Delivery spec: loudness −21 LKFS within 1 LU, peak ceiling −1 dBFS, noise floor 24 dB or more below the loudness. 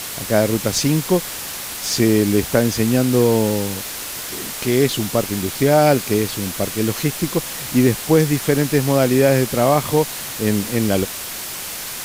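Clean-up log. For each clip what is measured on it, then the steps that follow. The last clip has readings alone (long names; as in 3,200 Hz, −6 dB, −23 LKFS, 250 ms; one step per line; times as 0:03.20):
background noise floor −29 dBFS; target noise floor −43 dBFS; integrated loudness −18.5 LKFS; sample peak −2.0 dBFS; target loudness −21.0 LKFS
→ broadband denoise 14 dB, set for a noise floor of −29 dBFS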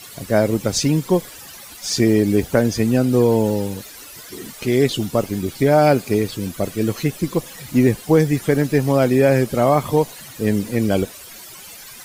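background noise floor −39 dBFS; target noise floor −43 dBFS
→ broadband denoise 6 dB, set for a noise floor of −39 dBFS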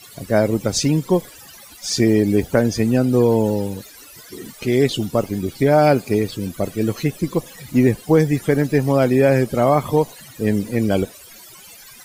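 background noise floor −43 dBFS; integrated loudness −18.5 LKFS; sample peak −3.0 dBFS; target loudness −21.0 LKFS
→ level −2.5 dB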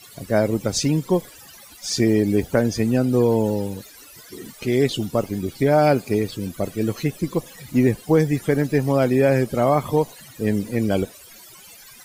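integrated loudness −21.0 LKFS; sample peak −5.5 dBFS; background noise floor −45 dBFS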